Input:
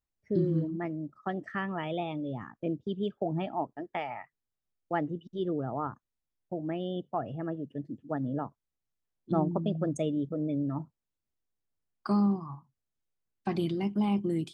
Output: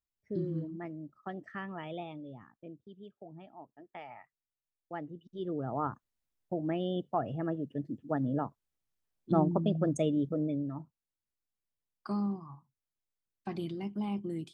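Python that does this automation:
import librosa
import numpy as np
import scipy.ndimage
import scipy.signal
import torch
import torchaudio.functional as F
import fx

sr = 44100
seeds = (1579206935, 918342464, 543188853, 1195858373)

y = fx.gain(x, sr, db=fx.line((1.98, -7.0), (2.89, -18.0), (3.6, -18.0), (4.09, -10.0), (5.14, -10.0), (5.85, 1.0), (10.37, 1.0), (10.78, -7.0)))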